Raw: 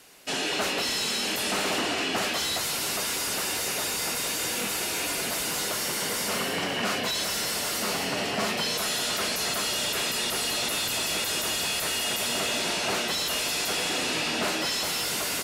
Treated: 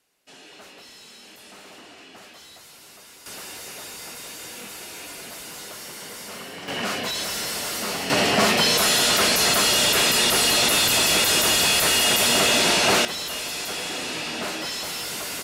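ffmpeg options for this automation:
-af "asetnsamples=n=441:p=0,asendcmd='3.26 volume volume -8.5dB;6.68 volume volume 0.5dB;8.1 volume volume 9dB;13.05 volume volume -2dB',volume=0.126"

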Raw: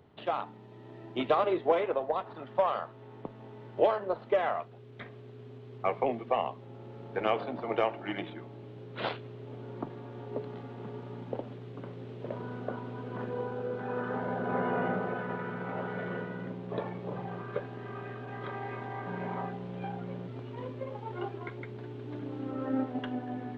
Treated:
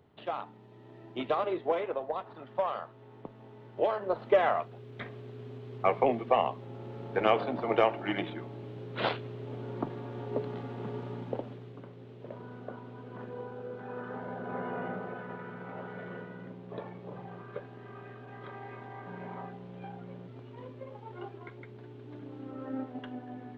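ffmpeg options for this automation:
-af "volume=1.5,afade=t=in:st=3.86:d=0.42:silence=0.446684,afade=t=out:st=11.03:d=0.86:silence=0.334965"

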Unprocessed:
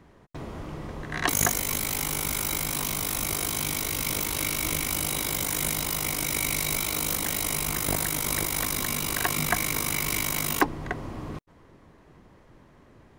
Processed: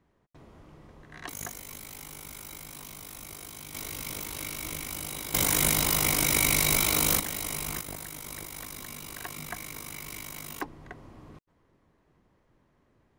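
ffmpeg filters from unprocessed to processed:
-af "asetnsamples=n=441:p=0,asendcmd='3.74 volume volume -8.5dB;5.34 volume volume 3.5dB;7.2 volume volume -5.5dB;7.81 volume volume -13dB',volume=0.178"

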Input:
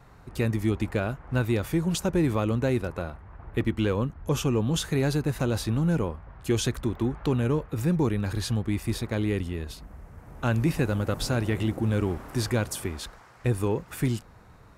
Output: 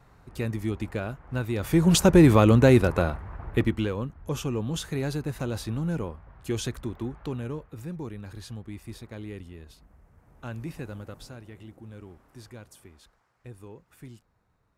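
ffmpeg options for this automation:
-af "volume=2.66,afade=t=in:st=1.55:d=0.41:silence=0.237137,afade=t=out:st=3.12:d=0.79:silence=0.223872,afade=t=out:st=6.67:d=1.2:silence=0.421697,afade=t=out:st=10.94:d=0.47:silence=0.446684"

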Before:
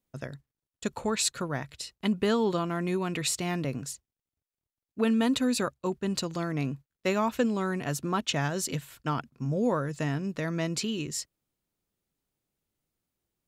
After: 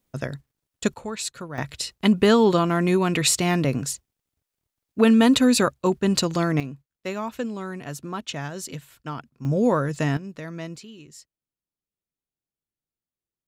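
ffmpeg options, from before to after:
-af "asetnsamples=n=441:p=0,asendcmd='0.94 volume volume -3dB;1.58 volume volume 9dB;6.6 volume volume -3dB;9.45 volume volume 6.5dB;10.17 volume volume -4dB;10.76 volume volume -12dB',volume=2.66"

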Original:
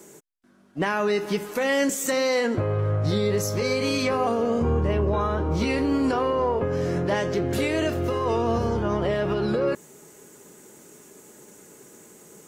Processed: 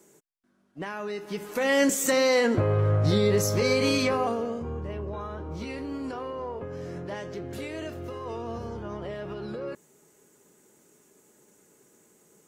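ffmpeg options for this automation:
-af "volume=1.12,afade=t=in:st=1.27:d=0.55:silence=0.266073,afade=t=out:st=3.88:d=0.74:silence=0.237137"

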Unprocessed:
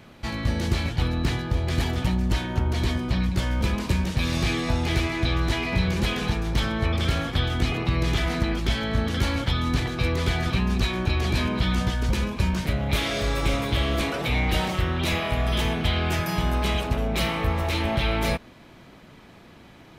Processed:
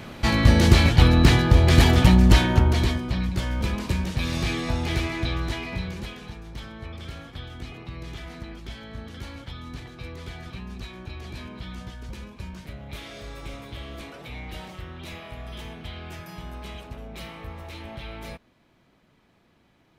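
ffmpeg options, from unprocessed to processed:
-af "volume=2.82,afade=t=out:st=2.34:d=0.67:silence=0.281838,afade=t=out:st=5.11:d=1.09:silence=0.251189"

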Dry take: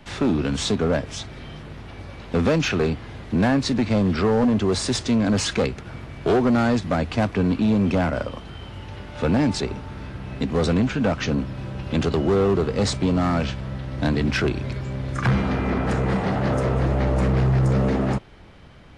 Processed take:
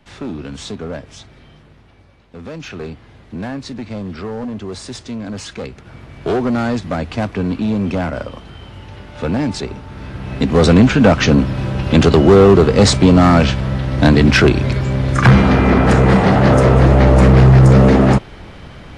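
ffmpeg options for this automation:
-af "volume=11.2,afade=t=out:st=1.24:d=1.09:silence=0.334965,afade=t=in:st=2.33:d=0.51:silence=0.375837,afade=t=in:st=5.58:d=0.7:silence=0.398107,afade=t=in:st=9.87:d=0.97:silence=0.316228"

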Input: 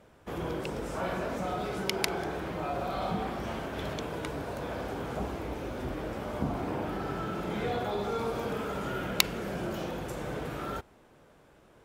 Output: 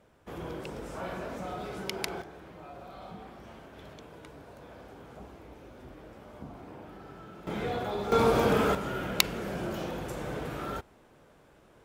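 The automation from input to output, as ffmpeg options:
-af "asetnsamples=n=441:p=0,asendcmd='2.22 volume volume -13dB;7.47 volume volume -1dB;8.12 volume volume 9dB;8.75 volume volume 0dB',volume=0.596"

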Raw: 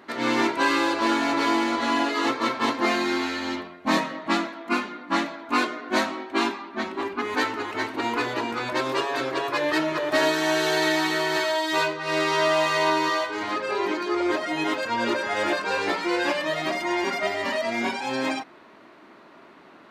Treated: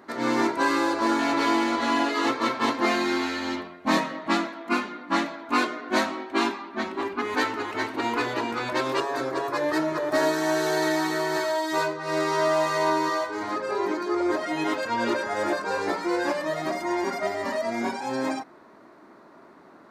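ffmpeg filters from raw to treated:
-af "asetnsamples=n=441:p=0,asendcmd='1.19 equalizer g -2;9 equalizer g -12;14.39 equalizer g -5.5;15.24 equalizer g -13',equalizer=f=2900:t=o:w=0.97:g=-9"

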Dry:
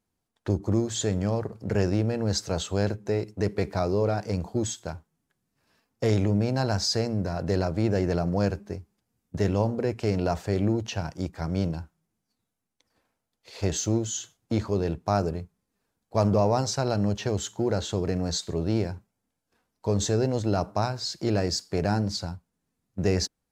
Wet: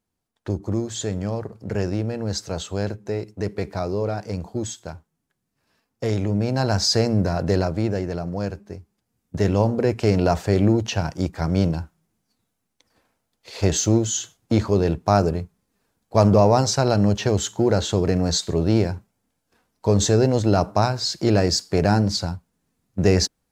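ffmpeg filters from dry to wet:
-af "volume=7.08,afade=t=in:st=6.22:d=0.96:silence=0.398107,afade=t=out:st=7.18:d=0.89:silence=0.316228,afade=t=in:st=8.66:d=1.26:silence=0.354813"

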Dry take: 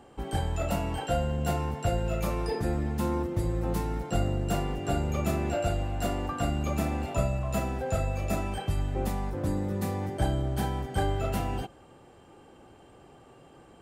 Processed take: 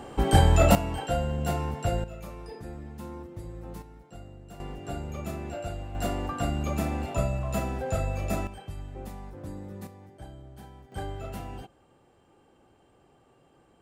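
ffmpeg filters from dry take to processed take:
-af "asetnsamples=n=441:p=0,asendcmd='0.75 volume volume 0dB;2.04 volume volume -11.5dB;3.82 volume volume -18dB;4.6 volume volume -7dB;5.95 volume volume 0dB;8.47 volume volume -10dB;9.87 volume volume -17.5dB;10.92 volume volume -8dB',volume=3.55"

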